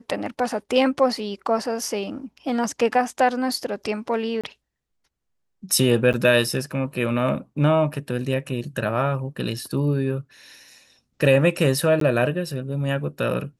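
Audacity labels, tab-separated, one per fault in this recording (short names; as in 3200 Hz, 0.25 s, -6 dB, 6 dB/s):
4.410000	4.440000	gap 26 ms
6.130000	6.140000	gap 8.4 ms
12.000000	12.010000	gap 13 ms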